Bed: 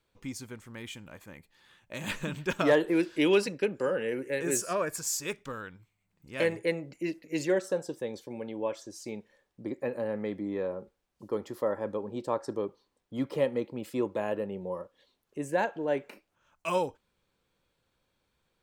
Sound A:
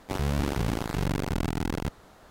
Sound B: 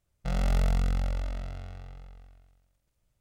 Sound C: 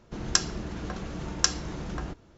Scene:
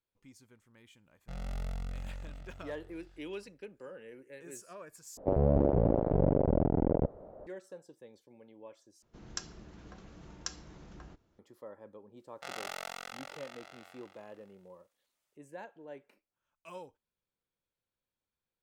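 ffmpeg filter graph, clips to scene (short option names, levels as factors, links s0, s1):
-filter_complex "[2:a]asplit=2[s0][s1];[0:a]volume=0.126[s2];[1:a]lowpass=f=570:t=q:w=3.9[s3];[s1]highpass=840[s4];[s2]asplit=3[s5][s6][s7];[s5]atrim=end=5.174[s8];[s3]atrim=end=2.3,asetpts=PTS-STARTPTS,volume=0.944[s9];[s6]atrim=start=7.466:end=9.024[s10];[3:a]atrim=end=2.37,asetpts=PTS-STARTPTS,volume=0.158[s11];[s7]atrim=start=11.386[s12];[s0]atrim=end=3.2,asetpts=PTS-STARTPTS,volume=0.237,afade=t=in:d=0.004:c=hsin,afade=t=out:st=3.196:d=0.004:c=hsin,adelay=1030[s13];[s4]atrim=end=3.2,asetpts=PTS-STARTPTS,volume=0.944,afade=t=in:d=0.004:c=hsin,afade=t=out:st=3.196:d=0.004:c=hsin,adelay=12170[s14];[s8][s9]acrossfade=d=0.004:c1=hsin:c2=hsin[s15];[s15][s10]acrossfade=d=0.004:c1=hsin:c2=hsin[s16];[s16][s11]acrossfade=d=0.004:c1=hsin:c2=hsin[s17];[s17][s12]acrossfade=d=0.004:c1=hsin:c2=hsin[s18];[s18][s13][s14]amix=inputs=3:normalize=0"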